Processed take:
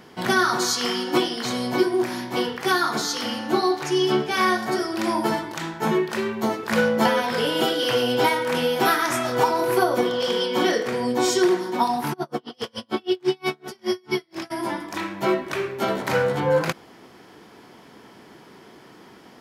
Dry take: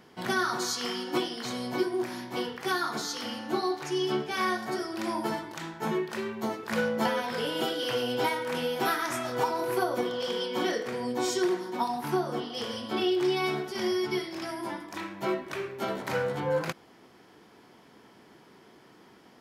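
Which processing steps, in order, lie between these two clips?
12.12–14.50 s: logarithmic tremolo 8.1 Hz -> 3.6 Hz, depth 38 dB; trim +8 dB

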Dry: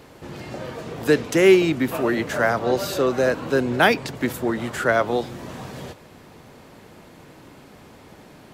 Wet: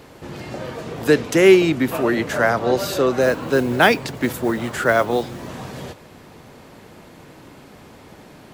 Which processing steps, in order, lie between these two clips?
3.21–5.49 s: modulation noise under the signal 27 dB; trim +2.5 dB

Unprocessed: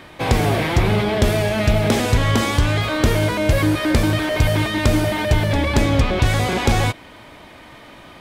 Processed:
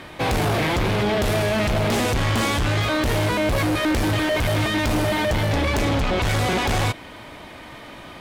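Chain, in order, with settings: in parallel at -8.5 dB: sine folder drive 11 dB, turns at -7 dBFS; on the sum: trim -7.5 dB; AC-3 320 kbps 48 kHz

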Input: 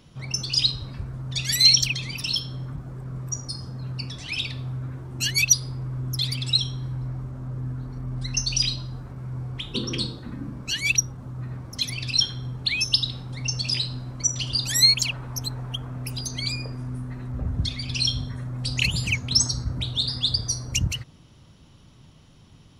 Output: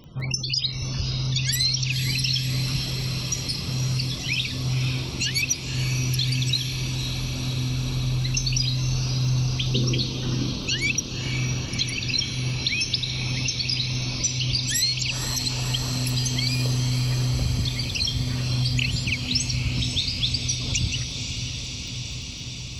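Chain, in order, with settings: loudest bins only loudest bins 64; crackle 17 per s -44 dBFS; compression, threshold -29 dBFS, peak gain reduction 17 dB; echo that smears into a reverb 524 ms, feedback 79%, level -7 dB; trim +6.5 dB

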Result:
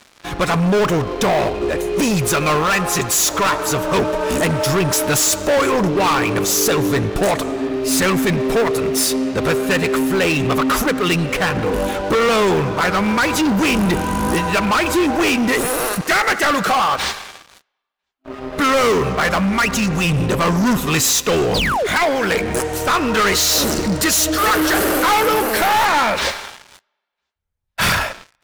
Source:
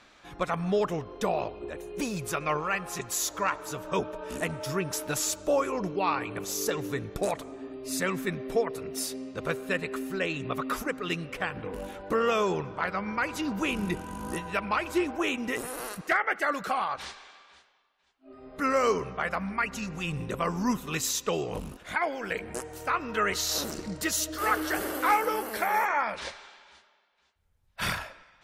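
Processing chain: painted sound fall, 21.54–21.87 s, 370–5100 Hz -37 dBFS; waveshaping leveller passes 5; trim +1.5 dB

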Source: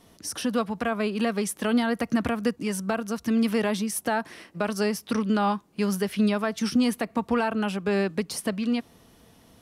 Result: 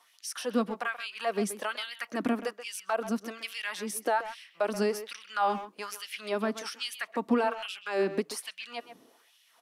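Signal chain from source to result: LFO high-pass sine 1.2 Hz 240–3100 Hz; speakerphone echo 130 ms, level -11 dB; trim -5.5 dB

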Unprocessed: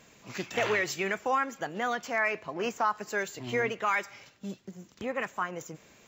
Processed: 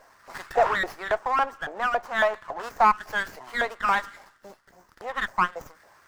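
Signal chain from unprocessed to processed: 0.53–2.34 s: tilt shelf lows +8.5 dB, about 1.2 kHz; LFO high-pass saw up 3.6 Hz 640–1700 Hz; high-order bell 3 kHz -14.5 dB 1 oct; sliding maximum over 5 samples; trim +3.5 dB

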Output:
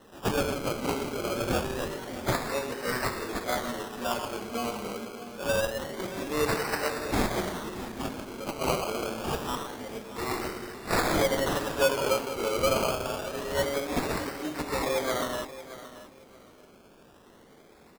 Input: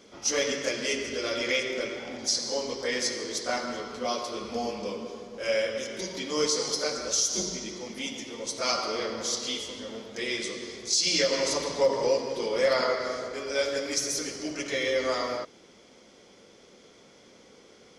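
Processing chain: band-stop 500 Hz, Q 12; decimation with a swept rate 19×, swing 60% 0.26 Hz; on a send: feedback delay 625 ms, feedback 22%, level -14.5 dB

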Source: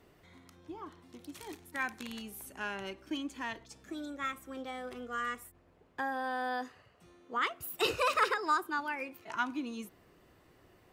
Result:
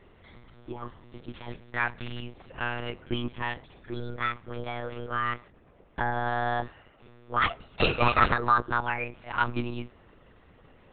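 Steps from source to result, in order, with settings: monotone LPC vocoder at 8 kHz 120 Hz; trim +7 dB

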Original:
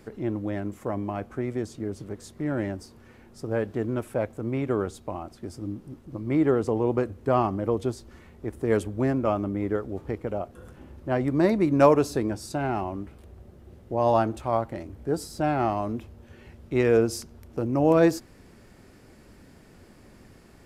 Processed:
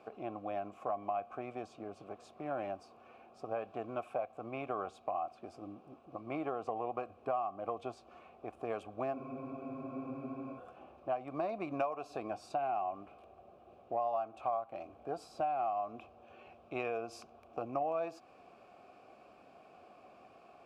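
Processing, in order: vowel filter a; compression 10:1, threshold -39 dBFS, peak gain reduction 19 dB; dynamic bell 390 Hz, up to -6 dB, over -56 dBFS, Q 0.98; spectral freeze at 9.17 s, 1.41 s; trim +10 dB

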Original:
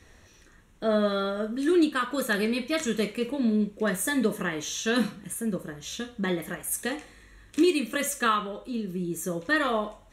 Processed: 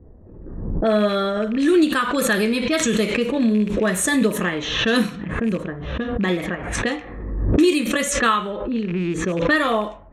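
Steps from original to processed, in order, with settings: rattle on loud lows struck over -35 dBFS, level -33 dBFS; level-controlled noise filter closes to 450 Hz, open at -23 dBFS; in parallel at -1 dB: compression, threshold -33 dBFS, peak gain reduction 15 dB; on the sum: level-controlled noise filter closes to 870 Hz, open at -23 dBFS; swell ahead of each attack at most 45 dB/s; trim +4 dB

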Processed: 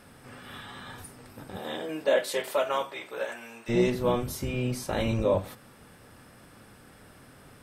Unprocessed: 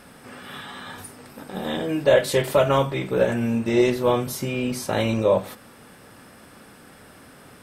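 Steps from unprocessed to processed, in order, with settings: octave divider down 1 oct, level -1 dB; 1.56–3.68 s: high-pass 300 Hz -> 990 Hz 12 dB/octave; trim -6 dB

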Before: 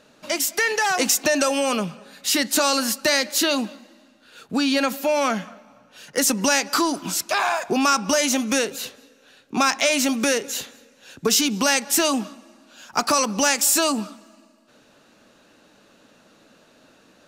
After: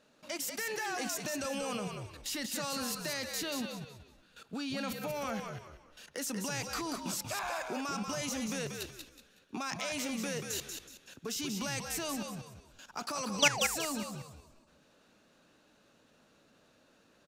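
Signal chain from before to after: painted sound fall, 13.39–13.62 s, 480–5100 Hz -18 dBFS; level held to a coarse grid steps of 15 dB; frequency-shifting echo 186 ms, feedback 31%, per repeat -70 Hz, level -5.5 dB; trim -7 dB

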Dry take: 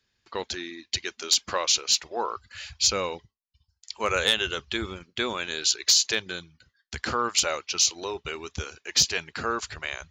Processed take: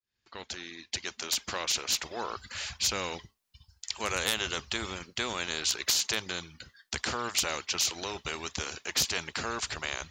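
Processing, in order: fade-in on the opening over 2.15 s; spectrum-flattening compressor 2:1; trim -3 dB

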